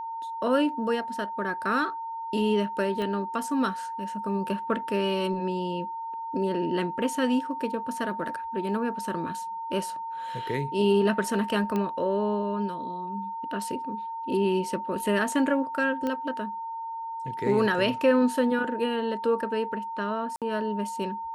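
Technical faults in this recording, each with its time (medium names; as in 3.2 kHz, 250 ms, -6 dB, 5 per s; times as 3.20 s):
whine 910 Hz -32 dBFS
3.02 s: pop -21 dBFS
11.76 s: pop -17 dBFS
16.07 s: pop -18 dBFS
20.36–20.42 s: dropout 57 ms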